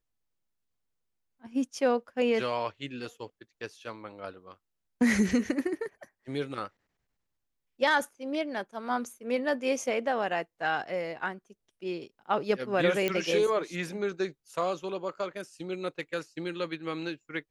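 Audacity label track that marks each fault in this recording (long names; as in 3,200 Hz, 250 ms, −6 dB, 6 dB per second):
13.080000	13.080000	click −14 dBFS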